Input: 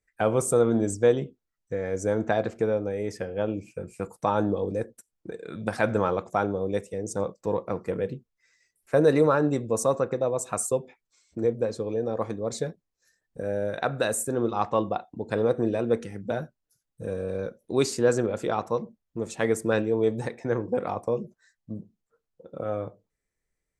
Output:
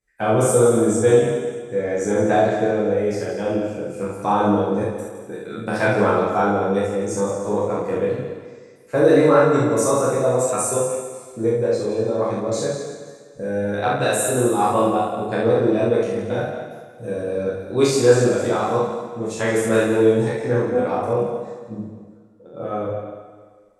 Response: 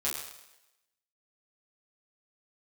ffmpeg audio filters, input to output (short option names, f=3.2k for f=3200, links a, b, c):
-filter_complex "[1:a]atrim=start_sample=2205,asetrate=25137,aresample=44100[a];[0:a][a]afir=irnorm=-1:irlink=0,aeval=exprs='1.26*(cos(1*acos(clip(val(0)/1.26,-1,1)))-cos(1*PI/2))+0.02*(cos(5*acos(clip(val(0)/1.26,-1,1)))-cos(5*PI/2))':c=same,volume=-3dB"